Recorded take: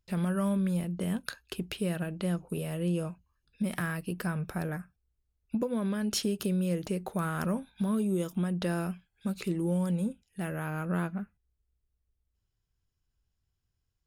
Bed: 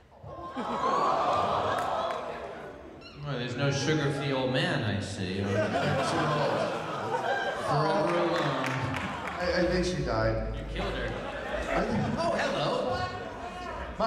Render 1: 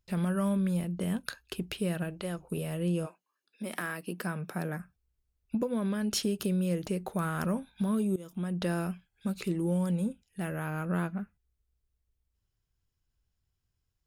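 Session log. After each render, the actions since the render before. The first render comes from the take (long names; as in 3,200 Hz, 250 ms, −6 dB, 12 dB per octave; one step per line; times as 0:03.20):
0:02.10–0:02.50: parametric band 210 Hz −10 dB 0.84 octaves
0:03.05–0:04.78: high-pass filter 370 Hz → 130 Hz 24 dB per octave
0:08.16–0:08.61: fade in, from −18.5 dB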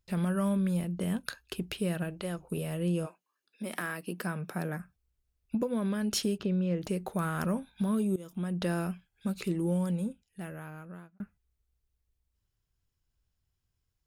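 0:06.38–0:06.82: high-frequency loss of the air 200 metres
0:09.70–0:11.20: fade out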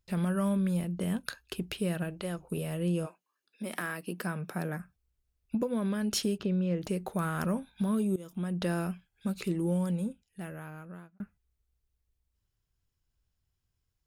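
no processing that can be heard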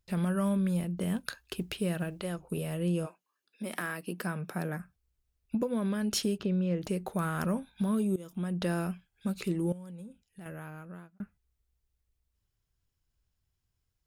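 0:00.98–0:02.22: log-companded quantiser 8 bits
0:09.72–0:10.46: downward compressor, threshold −43 dBFS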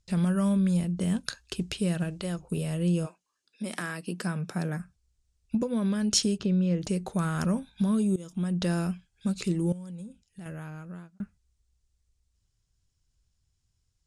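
low-pass filter 8,300 Hz 24 dB per octave
bass and treble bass +6 dB, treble +11 dB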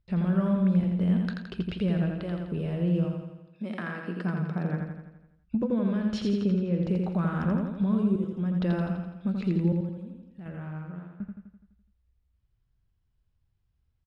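high-frequency loss of the air 390 metres
repeating echo 84 ms, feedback 56%, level −4 dB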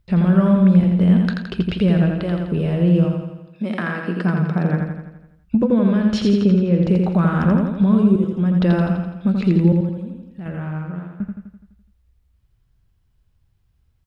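level +10.5 dB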